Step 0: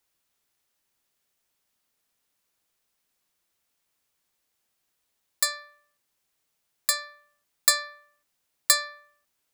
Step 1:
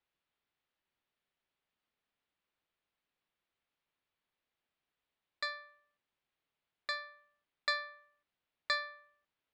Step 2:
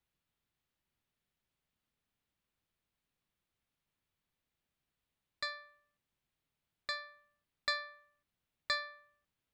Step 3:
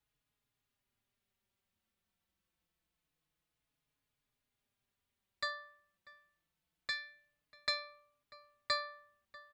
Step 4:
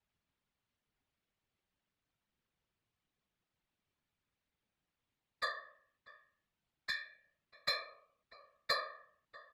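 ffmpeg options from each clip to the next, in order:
-af "lowpass=f=3.7k:w=0.5412,lowpass=f=3.7k:w=1.3066,volume=-6.5dB"
-af "bass=f=250:g=12,treble=f=4k:g=4,volume=-2dB"
-filter_complex "[0:a]asplit=2[a][b];[b]adelay=641.4,volume=-19dB,highshelf=f=4k:g=-14.4[c];[a][c]amix=inputs=2:normalize=0,asplit=2[d][e];[e]adelay=4.3,afreqshift=-0.26[f];[d][f]amix=inputs=2:normalize=1,volume=3.5dB"
-af "adynamicsmooth=sensitivity=6:basefreq=6k,afftfilt=real='hypot(re,im)*cos(2*PI*random(0))':imag='hypot(re,im)*sin(2*PI*random(1))':win_size=512:overlap=0.75,volume=6.5dB"

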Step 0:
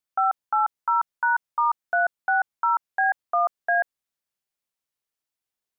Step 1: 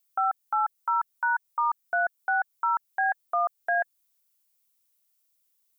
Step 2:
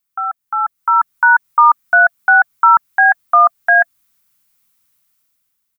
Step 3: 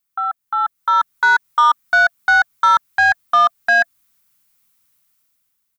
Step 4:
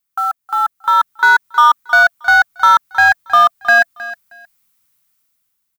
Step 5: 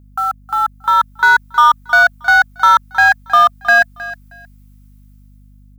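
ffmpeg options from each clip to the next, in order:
-af "aemphasis=mode=production:type=75kf,bandreject=f=1.7k:w=16,alimiter=limit=-18dB:level=0:latency=1:release=219"
-af "firequalizer=gain_entry='entry(260,0);entry(480,-27);entry(680,-7);entry(1200,1);entry(3000,-4)':delay=0.05:min_phase=1,dynaudnorm=f=260:g=7:m=12dB,bass=f=250:g=4,treble=f=4k:g=-4,volume=5.5dB"
-af "acontrast=58,volume=-6.5dB"
-filter_complex "[0:a]asplit=2[a][b];[b]acrusher=bits=4:mix=0:aa=0.000001,volume=-6.5dB[c];[a][c]amix=inputs=2:normalize=0,aecho=1:1:314|628:0.15|0.0299"
-af "aeval=exprs='val(0)+0.00708*(sin(2*PI*50*n/s)+sin(2*PI*2*50*n/s)/2+sin(2*PI*3*50*n/s)/3+sin(2*PI*4*50*n/s)/4+sin(2*PI*5*50*n/s)/5)':c=same"

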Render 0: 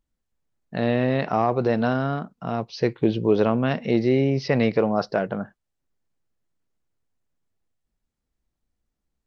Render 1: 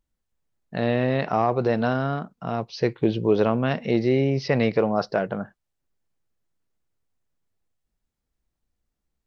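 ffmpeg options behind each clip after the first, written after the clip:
-af "equalizer=f=250:t=o:w=0.77:g=-2"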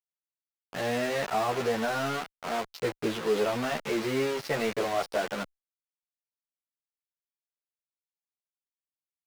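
-filter_complex "[0:a]acrusher=bits=4:mix=0:aa=0.000001,asplit=2[a][b];[b]highpass=f=720:p=1,volume=15dB,asoftclip=type=tanh:threshold=-7.5dB[c];[a][c]amix=inputs=2:normalize=0,lowpass=f=3.5k:p=1,volume=-6dB,asplit=2[d][e];[e]adelay=11.4,afreqshift=-1.5[f];[d][f]amix=inputs=2:normalize=1,volume=-6.5dB"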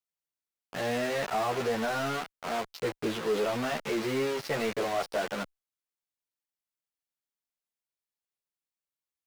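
-af "asoftclip=type=tanh:threshold=-21dB"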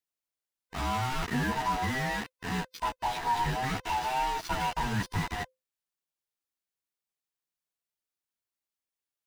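-af "afftfilt=real='real(if(lt(b,1008),b+24*(1-2*mod(floor(b/24),2)),b),0)':imag='imag(if(lt(b,1008),b+24*(1-2*mod(floor(b/24),2)),b),0)':win_size=2048:overlap=0.75"

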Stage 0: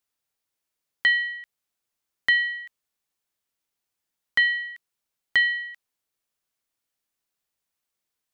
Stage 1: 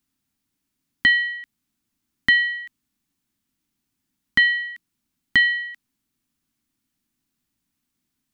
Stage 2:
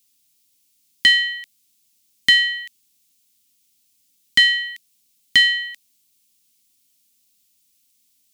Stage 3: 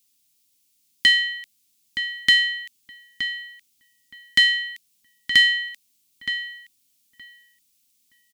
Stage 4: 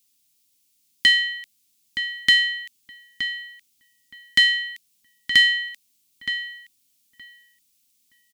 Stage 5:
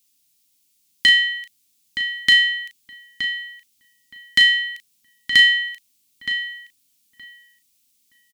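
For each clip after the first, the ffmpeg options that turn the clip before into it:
-af "lowshelf=f=360:t=q:w=3:g=10.5,volume=4dB"
-af "aexciter=amount=5.8:drive=6.8:freq=2.3k,volume=-4.5dB"
-filter_complex "[0:a]asplit=2[a][b];[b]adelay=920,lowpass=f=2.3k:p=1,volume=-7.5dB,asplit=2[c][d];[d]adelay=920,lowpass=f=2.3k:p=1,volume=0.16,asplit=2[e][f];[f]adelay=920,lowpass=f=2.3k:p=1,volume=0.16[g];[a][c][e][g]amix=inputs=4:normalize=0,volume=-2.5dB"
-af anull
-filter_complex "[0:a]asplit=2[a][b];[b]adelay=36,volume=-8dB[c];[a][c]amix=inputs=2:normalize=0,volume=1dB"

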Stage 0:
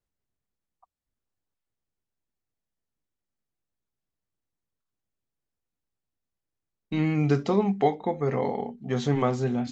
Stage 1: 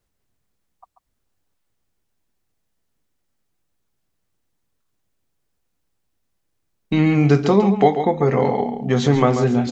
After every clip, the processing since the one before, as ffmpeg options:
-filter_complex "[0:a]aecho=1:1:138:0.316,asplit=2[a][b];[b]acompressor=threshold=-31dB:ratio=6,volume=0dB[c];[a][c]amix=inputs=2:normalize=0,volume=6dB"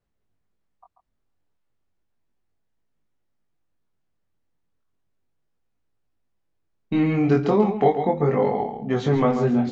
-af "aemphasis=mode=reproduction:type=75kf,flanger=delay=18.5:depth=5.3:speed=0.34"

